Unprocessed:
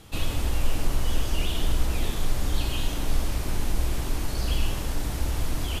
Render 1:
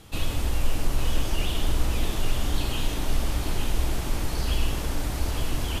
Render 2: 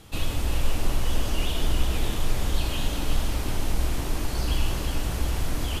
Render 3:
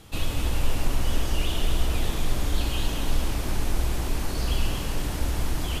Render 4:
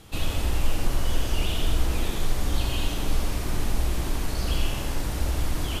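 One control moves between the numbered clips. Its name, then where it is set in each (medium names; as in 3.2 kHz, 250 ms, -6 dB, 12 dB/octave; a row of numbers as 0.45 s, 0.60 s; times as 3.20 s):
tape echo, time: 859 ms, 362 ms, 236 ms, 84 ms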